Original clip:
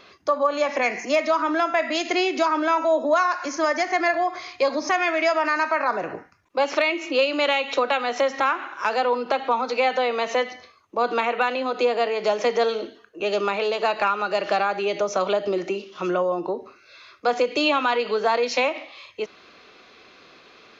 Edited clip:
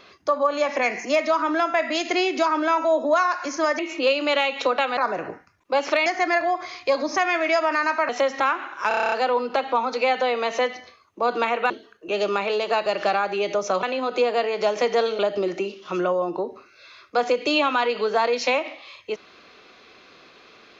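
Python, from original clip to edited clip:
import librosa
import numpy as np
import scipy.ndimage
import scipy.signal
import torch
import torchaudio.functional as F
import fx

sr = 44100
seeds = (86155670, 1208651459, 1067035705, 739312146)

y = fx.edit(x, sr, fx.swap(start_s=3.79, length_s=2.03, other_s=6.91, other_length_s=1.18),
    fx.stutter(start_s=8.88, slice_s=0.03, count=9),
    fx.move(start_s=11.46, length_s=1.36, to_s=15.29),
    fx.cut(start_s=13.98, length_s=0.34), tone=tone)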